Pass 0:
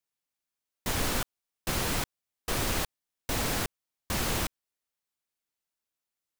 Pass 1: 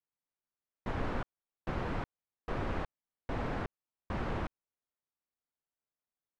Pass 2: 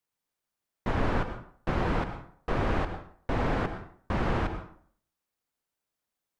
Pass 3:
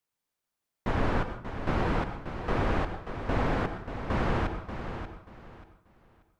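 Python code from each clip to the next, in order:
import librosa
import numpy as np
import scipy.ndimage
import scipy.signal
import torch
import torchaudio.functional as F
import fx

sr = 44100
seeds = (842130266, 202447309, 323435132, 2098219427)

y1 = scipy.signal.sosfilt(scipy.signal.butter(2, 1500.0, 'lowpass', fs=sr, output='sos'), x)
y1 = y1 * librosa.db_to_amplitude(-3.5)
y2 = fx.rev_plate(y1, sr, seeds[0], rt60_s=0.55, hf_ratio=0.7, predelay_ms=90, drr_db=8.5)
y2 = y2 * librosa.db_to_amplitude(7.5)
y3 = fx.echo_feedback(y2, sr, ms=585, feedback_pct=25, wet_db=-9)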